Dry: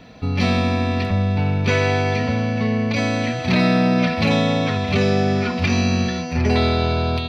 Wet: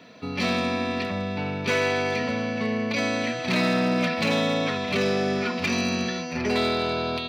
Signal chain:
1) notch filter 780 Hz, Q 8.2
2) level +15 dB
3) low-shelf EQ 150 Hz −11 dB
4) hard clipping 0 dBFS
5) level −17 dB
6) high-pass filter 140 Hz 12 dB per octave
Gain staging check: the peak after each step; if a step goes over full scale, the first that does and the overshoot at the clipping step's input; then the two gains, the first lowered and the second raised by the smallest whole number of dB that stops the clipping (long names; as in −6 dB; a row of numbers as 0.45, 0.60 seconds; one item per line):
−5.5, +9.5, +7.0, 0.0, −17.0, −12.5 dBFS
step 2, 7.0 dB
step 2 +8 dB, step 5 −10 dB